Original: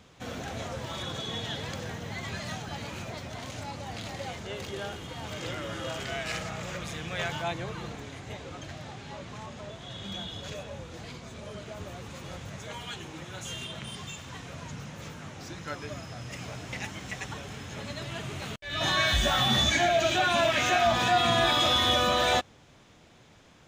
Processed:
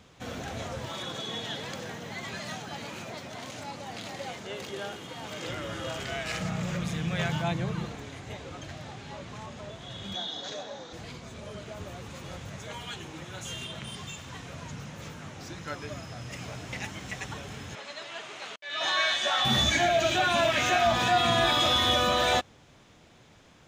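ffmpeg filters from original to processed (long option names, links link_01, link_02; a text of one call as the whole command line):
ffmpeg -i in.wav -filter_complex "[0:a]asettb=1/sr,asplit=3[link_01][link_02][link_03];[link_01]atrim=end=0.904[link_04];[link_02]atrim=start=0.9:end=5.49,asetpts=PTS-STARTPTS,afade=type=in:duration=0.004:curve=qsin,afade=type=out:start_time=4.586:duration=0.004:curve=qsin,highpass=160[link_05];[link_03]atrim=start=5.486[link_06];[link_04][link_05]acrossfade=duration=0.004:curve1=hsin:curve2=qsin[link_07];[link_07][link_06]acrossfade=duration=0.004:curve1=qsin:curve2=hsin,asettb=1/sr,asplit=3[link_08][link_09][link_10];[link_08]atrim=end=6.404[link_11];[link_09]atrim=start=6.4:end=7.85,asetpts=PTS-STARTPTS,afade=type=in:duration=0.004:curve=qsin,afade=type=out:start_time=1.446:duration=0.004:curve=qsin,equalizer=frequency=170:width=1.5:gain=11[link_12];[link_10]atrim=start=7.846[link_13];[link_11][link_12]acrossfade=duration=0.004:curve1=hsin:curve2=qsin[link_14];[link_14][link_13]acrossfade=duration=0.004:curve1=qsin:curve2=hsin,asettb=1/sr,asplit=3[link_15][link_16][link_17];[link_15]atrim=end=10.154[link_18];[link_16]atrim=start=10.15:end=10.93,asetpts=PTS-STARTPTS,afade=type=in:duration=0.004:curve=qsin,afade=type=out:start_time=0.776:duration=0.004:curve=qsin,highpass=260,equalizer=frequency=280:width_type=q:width=4:gain=5,equalizer=frequency=760:width_type=q:width=4:gain=7,equalizer=frequency=1700:width_type=q:width=4:gain=3,equalizer=frequency=2600:width_type=q:width=4:gain=-8,equalizer=frequency=3800:width_type=q:width=4:gain=10,equalizer=frequency=6000:width_type=q:width=4:gain=5,lowpass=frequency=7100:width=0.5412,lowpass=frequency=7100:width=1.3066[link_19];[link_17]atrim=start=10.926[link_20];[link_18][link_19]acrossfade=duration=0.004:curve1=hsin:curve2=qsin[link_21];[link_21][link_20]acrossfade=duration=0.004:curve1=qsin:curve2=hsin,asettb=1/sr,asplit=3[link_22][link_23][link_24];[link_22]atrim=end=17.754[link_25];[link_23]atrim=start=17.75:end=19.45,asetpts=PTS-STARTPTS,afade=type=in:duration=0.004:curve=qsin,afade=type=out:start_time=1.696:duration=0.004:curve=qsin,highpass=540,lowpass=6800[link_26];[link_24]atrim=start=19.446[link_27];[link_25][link_26]acrossfade=duration=0.004:curve1=hsin:curve2=qsin[link_28];[link_28][link_27]acrossfade=duration=0.004:curve1=qsin:curve2=hsin" out.wav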